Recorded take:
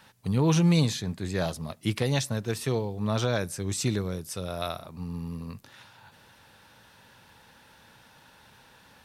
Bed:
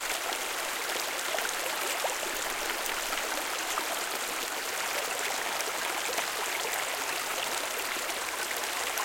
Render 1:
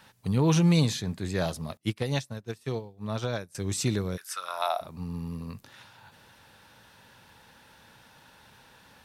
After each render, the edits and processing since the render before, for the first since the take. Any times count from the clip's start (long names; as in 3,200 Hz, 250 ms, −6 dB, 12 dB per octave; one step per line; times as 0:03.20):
0:01.77–0:03.55: expander for the loud parts 2.5 to 1, over −38 dBFS
0:04.16–0:04.80: high-pass with resonance 1,800 Hz → 680 Hz, resonance Q 4.6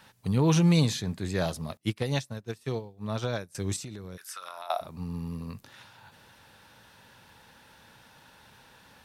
0:03.76–0:04.70: downward compressor 10 to 1, threshold −36 dBFS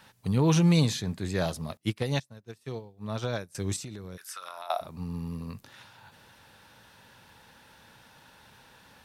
0:02.20–0:03.38: fade in, from −13.5 dB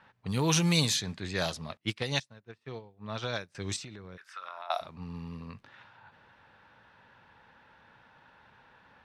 low-pass that shuts in the quiet parts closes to 1,400 Hz, open at −21 dBFS
tilt shelving filter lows −6 dB, about 1,100 Hz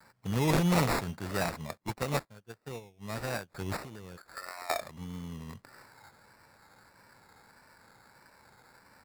sample-rate reduction 3,100 Hz, jitter 0%
pitch vibrato 1.6 Hz 73 cents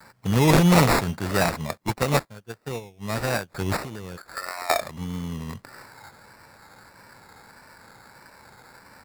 level +9.5 dB